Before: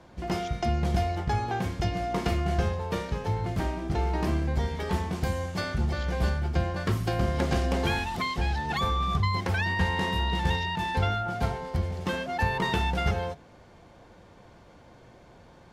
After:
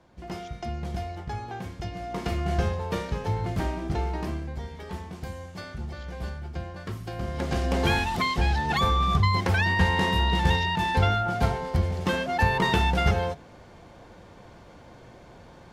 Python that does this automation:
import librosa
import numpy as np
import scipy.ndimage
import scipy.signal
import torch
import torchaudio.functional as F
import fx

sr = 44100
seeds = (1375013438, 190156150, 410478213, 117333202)

y = fx.gain(x, sr, db=fx.line((1.91, -6.5), (2.56, 1.0), (3.87, 1.0), (4.57, -8.0), (7.08, -8.0), (7.91, 4.0)))